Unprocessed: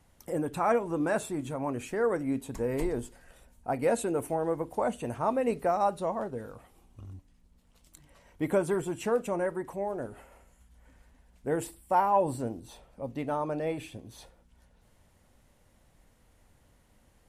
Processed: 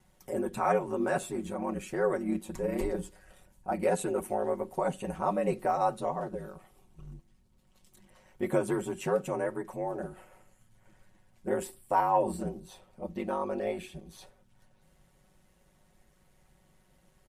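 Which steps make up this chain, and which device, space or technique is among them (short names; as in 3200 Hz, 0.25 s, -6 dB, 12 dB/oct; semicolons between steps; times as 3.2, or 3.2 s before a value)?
ring-modulated robot voice (ring modulator 51 Hz; comb 5.4 ms, depth 72%)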